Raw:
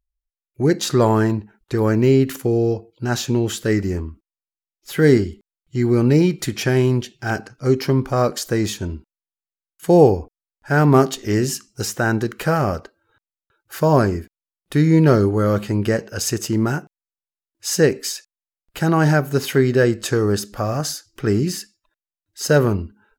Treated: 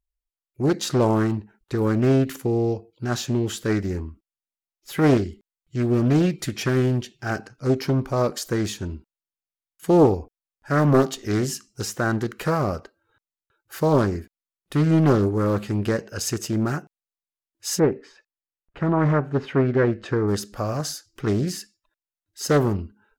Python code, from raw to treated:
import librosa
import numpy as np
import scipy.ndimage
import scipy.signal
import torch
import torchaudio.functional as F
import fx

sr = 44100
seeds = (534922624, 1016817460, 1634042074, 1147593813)

y = fx.lowpass(x, sr, hz=fx.line((17.78, 1300.0), (20.27, 2600.0)), slope=12, at=(17.78, 20.27), fade=0.02)
y = fx.doppler_dist(y, sr, depth_ms=0.53)
y = F.gain(torch.from_numpy(y), -4.0).numpy()